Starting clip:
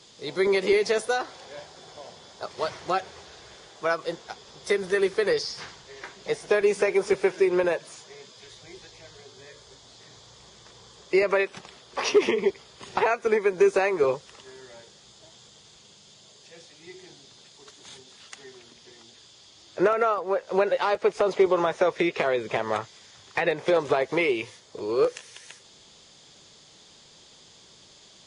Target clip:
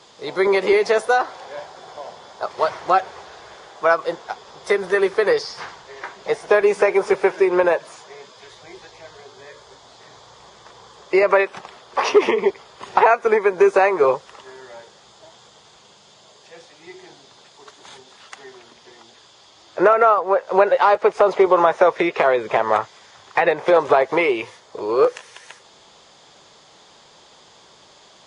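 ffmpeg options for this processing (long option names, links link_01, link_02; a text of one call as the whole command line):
ffmpeg -i in.wav -af "equalizer=frequency=930:width=0.54:gain=12.5,volume=-1dB" out.wav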